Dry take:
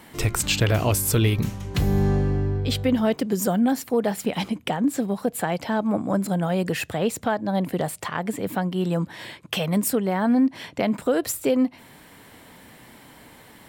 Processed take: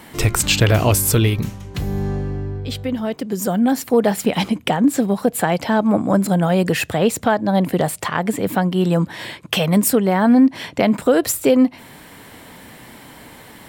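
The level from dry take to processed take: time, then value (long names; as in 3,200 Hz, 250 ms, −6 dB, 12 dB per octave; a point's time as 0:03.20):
0:01.06 +6 dB
0:01.72 −2 dB
0:03.11 −2 dB
0:03.92 +7 dB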